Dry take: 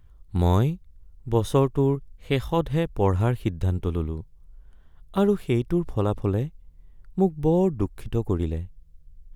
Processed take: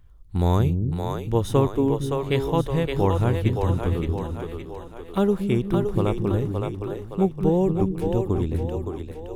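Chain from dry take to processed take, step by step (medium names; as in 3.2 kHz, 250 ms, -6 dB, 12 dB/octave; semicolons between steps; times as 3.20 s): two-band feedback delay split 330 Hz, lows 229 ms, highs 567 ms, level -4 dB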